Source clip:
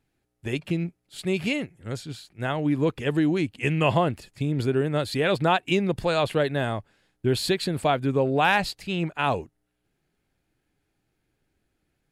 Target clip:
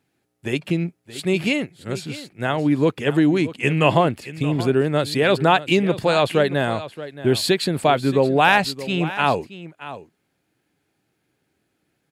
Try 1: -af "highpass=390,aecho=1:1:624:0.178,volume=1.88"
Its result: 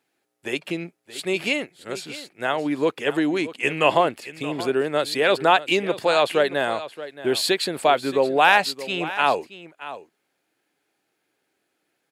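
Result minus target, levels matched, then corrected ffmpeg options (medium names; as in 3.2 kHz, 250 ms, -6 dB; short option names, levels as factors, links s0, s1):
125 Hz band -12.5 dB
-af "highpass=130,aecho=1:1:624:0.178,volume=1.88"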